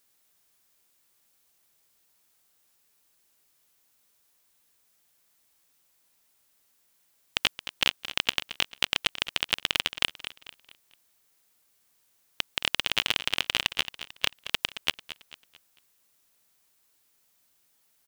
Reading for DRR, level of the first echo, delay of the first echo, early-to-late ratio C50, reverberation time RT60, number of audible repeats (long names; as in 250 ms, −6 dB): no reverb audible, −13.0 dB, 222 ms, no reverb audible, no reverb audible, 3